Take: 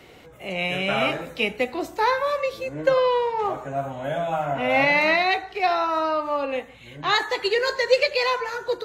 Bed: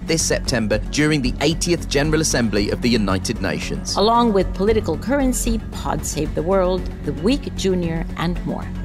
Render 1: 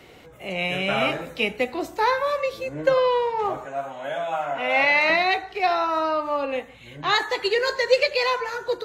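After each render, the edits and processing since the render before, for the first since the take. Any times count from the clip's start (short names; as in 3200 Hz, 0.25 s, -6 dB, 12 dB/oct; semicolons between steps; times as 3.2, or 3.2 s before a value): 3.65–5.1 weighting filter A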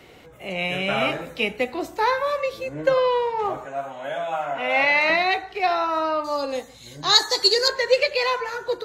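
6.24–7.68 resonant high shelf 3600 Hz +11 dB, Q 3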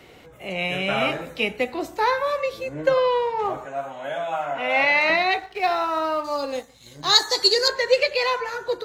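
5.39–7.27 G.711 law mismatch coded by A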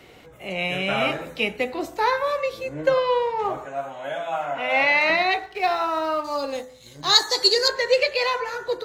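de-hum 84.63 Hz, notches 23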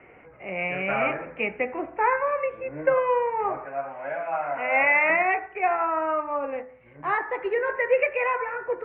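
steep low-pass 2500 Hz 72 dB/oct; low shelf 320 Hz -6.5 dB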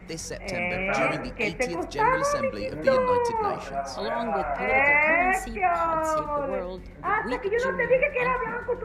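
add bed -16.5 dB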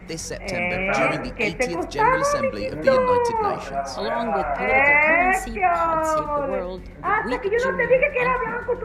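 gain +4 dB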